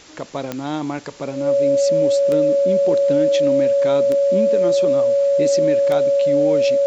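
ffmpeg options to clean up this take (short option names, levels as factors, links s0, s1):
-af "adeclick=t=4,bandreject=f=560:w=30,afwtdn=0.0079"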